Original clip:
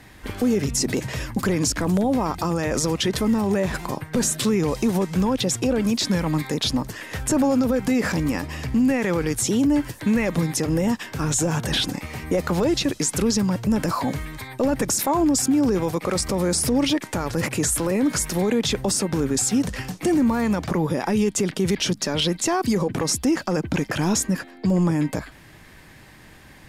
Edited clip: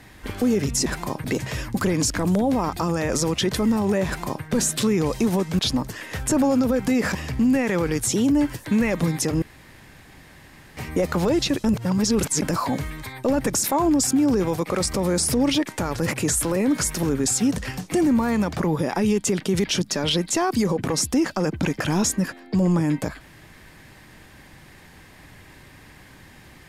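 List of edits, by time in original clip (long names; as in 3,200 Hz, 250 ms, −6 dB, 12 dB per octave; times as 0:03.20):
0:03.68–0:04.06: duplicate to 0:00.86
0:05.21–0:06.59: remove
0:08.15–0:08.50: remove
0:10.77–0:12.12: fill with room tone
0:12.99–0:13.77: reverse
0:18.38–0:19.14: remove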